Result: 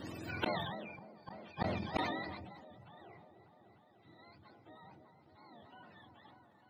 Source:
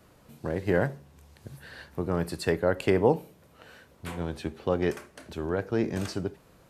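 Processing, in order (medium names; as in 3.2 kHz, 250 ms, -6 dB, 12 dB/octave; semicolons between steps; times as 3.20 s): spectrum inverted on a logarithmic axis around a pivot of 580 Hz; peaking EQ 320 Hz +10 dB 0.42 oct; peak limiter -22.5 dBFS, peak gain reduction 10.5 dB; delay with an opening low-pass 299 ms, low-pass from 750 Hz, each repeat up 1 oct, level -6 dB; inverted gate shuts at -33 dBFS, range -38 dB; decay stretcher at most 34 dB/s; trim +12 dB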